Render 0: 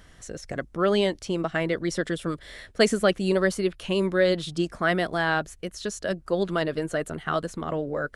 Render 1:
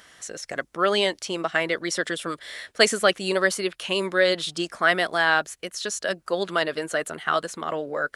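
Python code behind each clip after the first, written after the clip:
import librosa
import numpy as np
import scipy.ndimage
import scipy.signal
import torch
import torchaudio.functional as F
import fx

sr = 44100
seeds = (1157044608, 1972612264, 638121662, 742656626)

y = fx.highpass(x, sr, hz=990.0, slope=6)
y = y * librosa.db_to_amplitude(7.0)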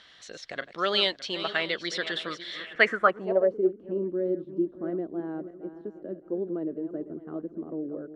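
y = fx.reverse_delay_fb(x, sr, ms=306, feedback_pct=52, wet_db=-12)
y = fx.filter_sweep_lowpass(y, sr, from_hz=3900.0, to_hz=320.0, start_s=2.52, end_s=3.71, q=3.5)
y = y * librosa.db_to_amplitude(-6.5)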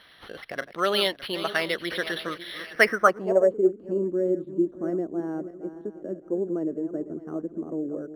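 y = np.interp(np.arange(len(x)), np.arange(len(x))[::6], x[::6])
y = y * librosa.db_to_amplitude(3.5)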